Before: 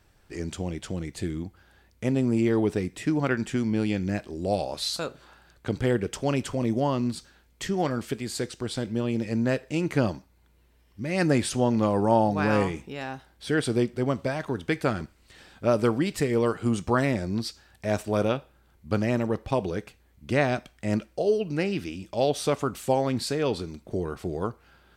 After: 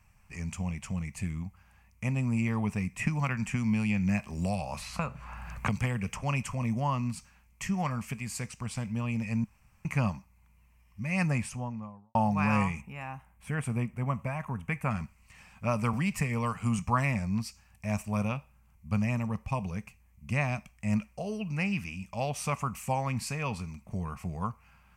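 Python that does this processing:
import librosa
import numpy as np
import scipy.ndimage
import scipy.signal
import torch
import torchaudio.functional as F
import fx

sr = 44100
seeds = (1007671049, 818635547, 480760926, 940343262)

y = fx.band_squash(x, sr, depth_pct=100, at=(2.99, 6.23))
y = fx.studio_fade_out(y, sr, start_s=11.06, length_s=1.09)
y = fx.peak_eq(y, sr, hz=4800.0, db=-14.5, octaves=1.1, at=(12.81, 14.91))
y = fx.band_squash(y, sr, depth_pct=40, at=(15.93, 16.79))
y = fx.peak_eq(y, sr, hz=1400.0, db=-4.0, octaves=2.7, at=(17.43, 20.96))
y = fx.edit(y, sr, fx.room_tone_fill(start_s=9.44, length_s=0.41), tone=tone)
y = fx.curve_eq(y, sr, hz=(210.0, 330.0, 1100.0, 1500.0, 2500.0, 3600.0, 5900.0), db=(0, -22, 3, -9, 5, -17, -2))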